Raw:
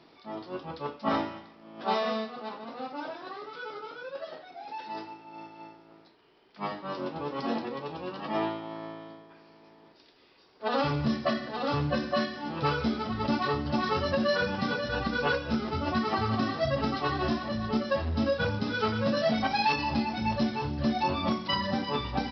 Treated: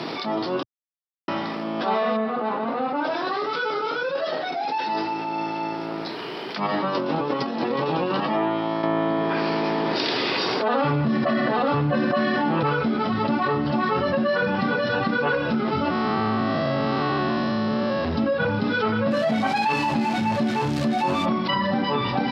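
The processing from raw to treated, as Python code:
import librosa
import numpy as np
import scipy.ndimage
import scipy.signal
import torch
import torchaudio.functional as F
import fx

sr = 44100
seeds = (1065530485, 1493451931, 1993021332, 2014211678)

y = fx.lowpass(x, sr, hz=fx.line((2.16, 1800.0), (3.03, 2600.0)), slope=12, at=(2.16, 3.03), fade=0.02)
y = fx.over_compress(y, sr, threshold_db=-38.0, ratio=-0.5, at=(6.66, 8.19), fade=0.02)
y = fx.env_flatten(y, sr, amount_pct=70, at=(8.83, 12.63))
y = fx.spec_blur(y, sr, span_ms=264.0, at=(15.9, 18.05))
y = fx.crossing_spikes(y, sr, level_db=-22.5, at=(19.11, 21.26))
y = fx.edit(y, sr, fx.silence(start_s=0.63, length_s=0.65), tone=tone)
y = scipy.signal.sosfilt(scipy.signal.butter(4, 120.0, 'highpass', fs=sr, output='sos'), y)
y = fx.env_lowpass_down(y, sr, base_hz=2600.0, full_db=-26.0)
y = fx.env_flatten(y, sr, amount_pct=70)
y = y * librosa.db_to_amplitude(2.0)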